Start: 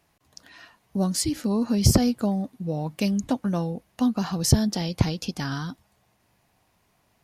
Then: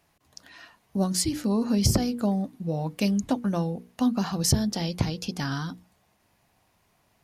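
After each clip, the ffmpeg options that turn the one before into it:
-af "alimiter=limit=0.335:level=0:latency=1:release=344,bandreject=f=60:t=h:w=6,bandreject=f=120:t=h:w=6,bandreject=f=180:t=h:w=6,bandreject=f=240:t=h:w=6,bandreject=f=300:t=h:w=6,bandreject=f=360:t=h:w=6,bandreject=f=420:t=h:w=6,bandreject=f=480:t=h:w=6"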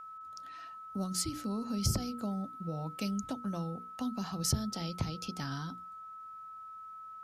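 -filter_complex "[0:a]acrossover=split=170|3000[s0][s1][s2];[s1]acompressor=threshold=0.0251:ratio=2.5[s3];[s0][s3][s2]amix=inputs=3:normalize=0,aeval=exprs='val(0)+0.0141*sin(2*PI*1300*n/s)':c=same,volume=0.422"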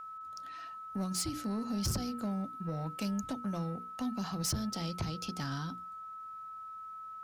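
-af "asoftclip=type=tanh:threshold=0.0316,volume=1.26"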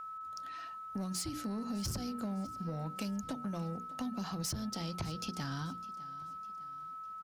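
-af "acompressor=threshold=0.0158:ratio=6,aecho=1:1:605|1210|1815:0.112|0.0494|0.0217,volume=1.12"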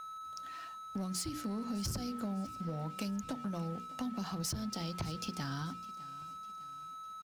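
-af "aeval=exprs='sgn(val(0))*max(abs(val(0))-0.00158,0)':c=same,volume=1.12"

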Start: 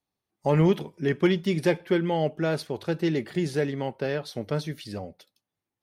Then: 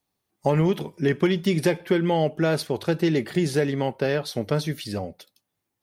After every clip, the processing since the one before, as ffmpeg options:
-af "highshelf=f=8600:g=6,acompressor=threshold=0.0794:ratio=6,volume=1.88"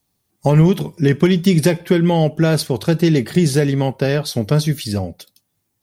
-af "bass=f=250:g=8,treble=f=4000:g=7,volume=1.58"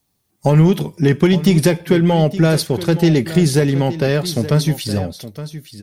-filter_complex "[0:a]asplit=2[s0][s1];[s1]volume=4.47,asoftclip=hard,volume=0.224,volume=0.316[s2];[s0][s2]amix=inputs=2:normalize=0,aecho=1:1:868:0.2,volume=0.891"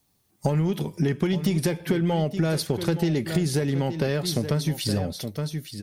-af "acompressor=threshold=0.0891:ratio=6"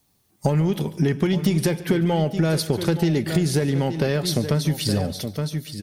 -af "aecho=1:1:143|286|429:0.119|0.0499|0.021,volume=1.41"

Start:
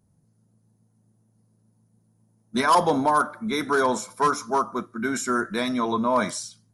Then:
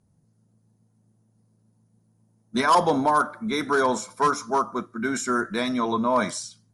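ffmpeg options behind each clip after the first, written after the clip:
-af "lowpass=f=10000:w=0.5412,lowpass=f=10000:w=1.3066"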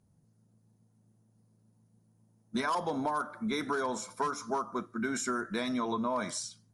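-af "acompressor=threshold=0.0501:ratio=6,volume=0.708"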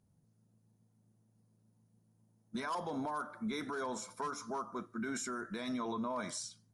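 -af "alimiter=level_in=1.33:limit=0.0631:level=0:latency=1:release=18,volume=0.75,volume=0.631"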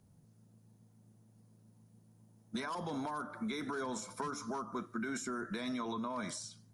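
-filter_complex "[0:a]acrossover=split=340|1100[s0][s1][s2];[s0]acompressor=threshold=0.00398:ratio=4[s3];[s1]acompressor=threshold=0.002:ratio=4[s4];[s2]acompressor=threshold=0.00282:ratio=4[s5];[s3][s4][s5]amix=inputs=3:normalize=0,volume=2.37"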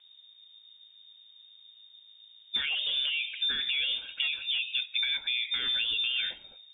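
-af "lowpass=f=3200:t=q:w=0.5098,lowpass=f=3200:t=q:w=0.6013,lowpass=f=3200:t=q:w=0.9,lowpass=f=3200:t=q:w=2.563,afreqshift=-3800,volume=2.66"

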